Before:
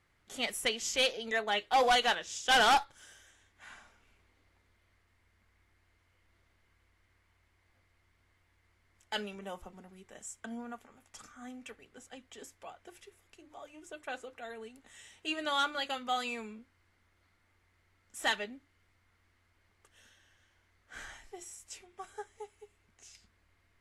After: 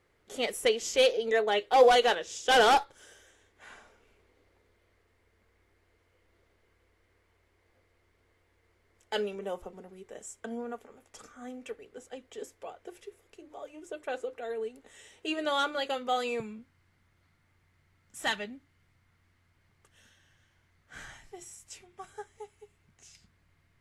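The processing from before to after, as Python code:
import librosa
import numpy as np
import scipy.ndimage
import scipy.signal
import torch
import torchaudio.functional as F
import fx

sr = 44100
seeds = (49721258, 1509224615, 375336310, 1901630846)

y = fx.peak_eq(x, sr, hz=fx.steps((0.0, 450.0), (16.4, 140.0)), db=12.5, octaves=0.89)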